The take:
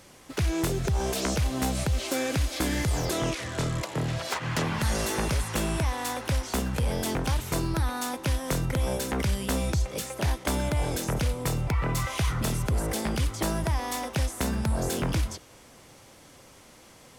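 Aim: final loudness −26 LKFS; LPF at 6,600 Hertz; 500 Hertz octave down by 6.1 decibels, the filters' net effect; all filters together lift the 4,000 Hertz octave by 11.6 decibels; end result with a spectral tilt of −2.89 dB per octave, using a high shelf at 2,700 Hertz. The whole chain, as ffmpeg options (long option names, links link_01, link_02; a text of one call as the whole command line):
ffmpeg -i in.wav -af "lowpass=6600,equalizer=frequency=500:width_type=o:gain=-8.5,highshelf=frequency=2700:gain=7.5,equalizer=frequency=4000:width_type=o:gain=9,volume=-0.5dB" out.wav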